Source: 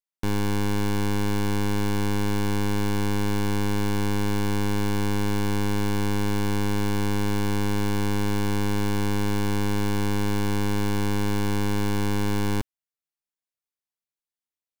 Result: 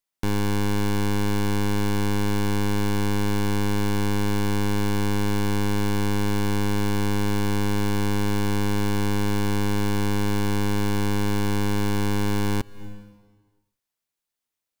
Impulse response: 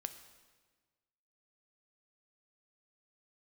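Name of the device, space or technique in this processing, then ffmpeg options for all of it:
ducked reverb: -filter_complex "[0:a]asplit=3[a][b][c];[1:a]atrim=start_sample=2205[d];[b][d]afir=irnorm=-1:irlink=0[e];[c]apad=whole_len=652718[f];[e][f]sidechaincompress=threshold=-48dB:ratio=4:attack=16:release=155,volume=5.5dB[g];[a][g]amix=inputs=2:normalize=0"

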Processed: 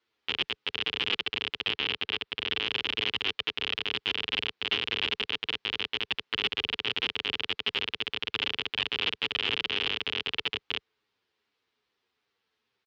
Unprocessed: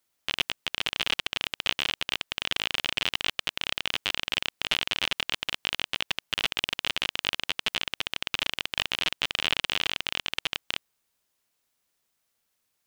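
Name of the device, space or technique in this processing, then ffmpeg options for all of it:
barber-pole flanger into a guitar amplifier: -filter_complex "[0:a]asplit=2[a][b];[b]adelay=8.6,afreqshift=-2.4[c];[a][c]amix=inputs=2:normalize=1,asoftclip=type=tanh:threshold=-22dB,highpass=78,equalizer=f=160:t=q:w=4:g=-8,equalizer=f=430:t=q:w=4:g=8,equalizer=f=620:t=q:w=4:g=-9,lowpass=f=4.2k:w=0.5412,lowpass=f=4.2k:w=1.3066,asettb=1/sr,asplit=3[d][e][f];[d]atrim=end=1.714[g];[e]atrim=start=1.71:end=2.62,asetpts=PTS-STARTPTS,afade=t=in:d=0.004:c=qsin,afade=t=out:st=0.906:d=0.004:c=qsin,lowpass=5.6k[h];[f]atrim=start=2.616[i];[g][h]acrossfade=d=0.004:c1=hsin:c2=qsin[j];[j][i]acrossfade=d=0.004:c1=qsin:c2=hsin,volume=6.5dB"

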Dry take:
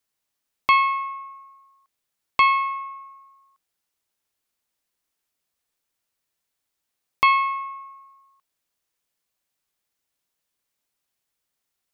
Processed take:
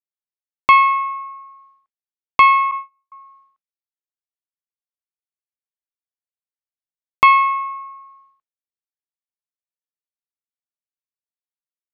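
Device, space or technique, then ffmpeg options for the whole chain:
hearing-loss simulation: -filter_complex "[0:a]asettb=1/sr,asplit=3[a][b][c];[a]atrim=end=2.714[d];[b]atrim=start=2.71:end=3.12,asetpts=PTS-STARTPTS,afade=t=in:d=0.004:c=qsin,afade=t=out:st=0.406:d=0.004:c=qsin,agate=range=-35dB:threshold=-31dB:ratio=16:detection=peak[e];[c]atrim=start=3.116[f];[d][e]acrossfade=d=0.004:c1=hsin:c2=qsin[g];[g][f]acrossfade=d=0.004:c1=qsin:c2=hsin,lowpass=2.6k,agate=range=-33dB:threshold=-55dB:ratio=3:detection=peak,volume=7dB"

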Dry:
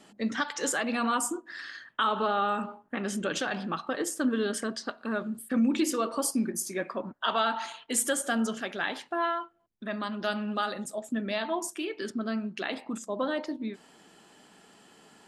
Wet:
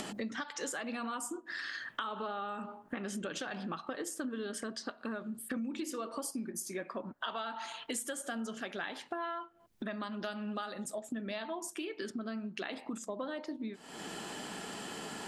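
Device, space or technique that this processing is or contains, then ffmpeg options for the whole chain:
upward and downward compression: -af "acompressor=mode=upward:threshold=-37dB:ratio=2.5,acompressor=threshold=-42dB:ratio=6,volume=5dB"

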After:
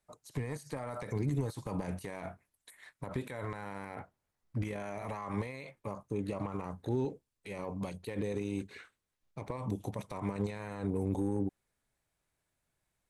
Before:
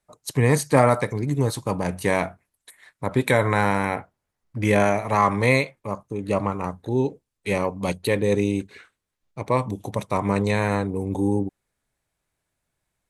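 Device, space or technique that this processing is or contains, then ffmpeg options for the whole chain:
de-esser from a sidechain: -filter_complex "[0:a]asplit=2[a][b];[b]highpass=f=4.2k:p=1,apad=whole_len=577283[c];[a][c]sidechaincompress=threshold=-44dB:ratio=16:attack=0.66:release=38,volume=-4dB"

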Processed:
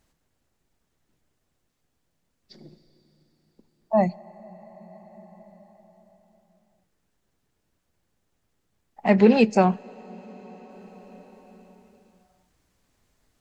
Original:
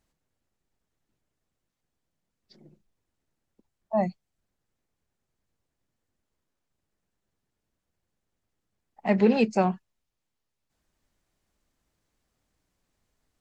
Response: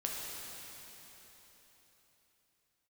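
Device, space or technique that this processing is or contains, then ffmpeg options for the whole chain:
ducked reverb: -filter_complex "[0:a]asplit=3[a][b][c];[1:a]atrim=start_sample=2205[d];[b][d]afir=irnorm=-1:irlink=0[e];[c]apad=whole_len=591351[f];[e][f]sidechaincompress=threshold=-32dB:ratio=16:attack=6.4:release=1450,volume=-7.5dB[g];[a][g]amix=inputs=2:normalize=0,volume=4.5dB"

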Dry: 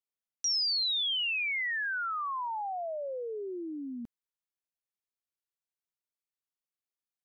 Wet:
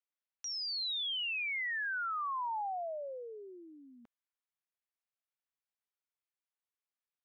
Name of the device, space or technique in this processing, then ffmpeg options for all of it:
DJ mixer with the lows and highs turned down: -filter_complex "[0:a]acrossover=split=560 3400:gain=0.0891 1 0.224[a][b][c];[a][b][c]amix=inputs=3:normalize=0,alimiter=level_in=9dB:limit=-24dB:level=0:latency=1,volume=-9dB"

